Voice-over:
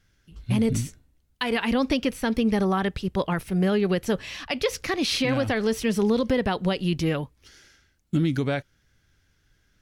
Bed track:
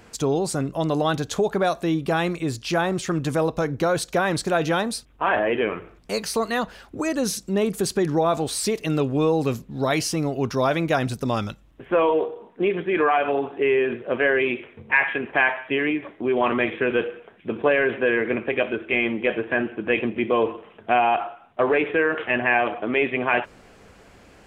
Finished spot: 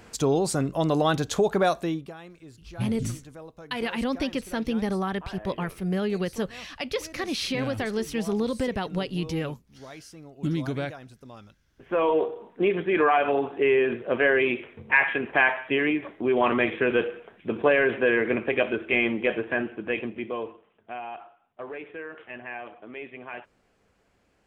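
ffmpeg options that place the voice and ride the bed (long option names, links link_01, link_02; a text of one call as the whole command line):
ffmpeg -i stem1.wav -i stem2.wav -filter_complex "[0:a]adelay=2300,volume=-4.5dB[link_01];[1:a]volume=20dB,afade=type=out:start_time=1.69:duration=0.44:silence=0.0891251,afade=type=in:start_time=11.62:duration=0.59:silence=0.0944061,afade=type=out:start_time=19.03:duration=1.64:silence=0.149624[link_02];[link_01][link_02]amix=inputs=2:normalize=0" out.wav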